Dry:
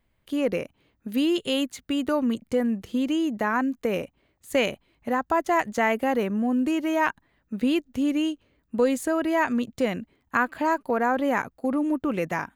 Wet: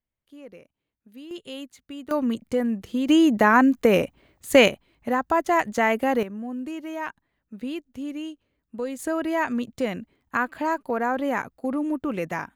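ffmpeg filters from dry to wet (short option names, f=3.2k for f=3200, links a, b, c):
-af "asetnsamples=n=441:p=0,asendcmd='1.31 volume volume -11.5dB;2.11 volume volume 0dB;3.09 volume volume 8dB;4.68 volume volume 1.5dB;6.23 volume volume -8.5dB;8.99 volume volume -1.5dB',volume=-19dB"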